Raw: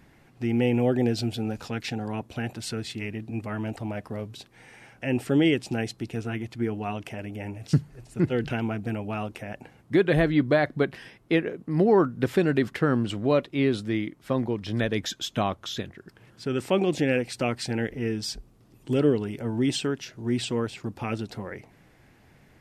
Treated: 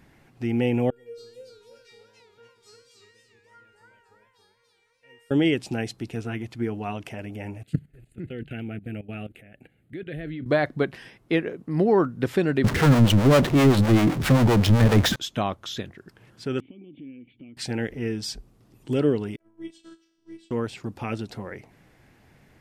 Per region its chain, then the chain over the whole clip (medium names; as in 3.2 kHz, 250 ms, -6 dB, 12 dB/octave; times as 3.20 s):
0.90–5.31 s: feedback comb 470 Hz, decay 0.64 s, mix 100% + modulated delay 284 ms, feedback 33%, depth 190 cents, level -4 dB
7.63–10.46 s: level held to a coarse grid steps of 16 dB + static phaser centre 2.4 kHz, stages 4
12.64–15.16 s: tone controls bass +9 dB, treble -8 dB + power-law waveshaper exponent 0.35 + harmonic tremolo 7.7 Hz, crossover 420 Hz
16.60–17.57 s: compression 5:1, threshold -33 dBFS + cascade formant filter i
19.36–20.51 s: feedback comb 52 Hz, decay 1.3 s, mix 80% + robot voice 328 Hz + upward expansion 2.5:1, over -46 dBFS
whole clip: none